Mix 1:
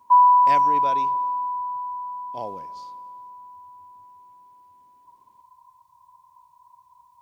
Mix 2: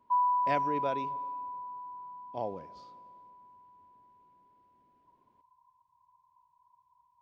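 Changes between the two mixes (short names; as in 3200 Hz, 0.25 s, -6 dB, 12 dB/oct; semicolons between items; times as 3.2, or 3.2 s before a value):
background -11.0 dB; master: add tape spacing loss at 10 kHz 21 dB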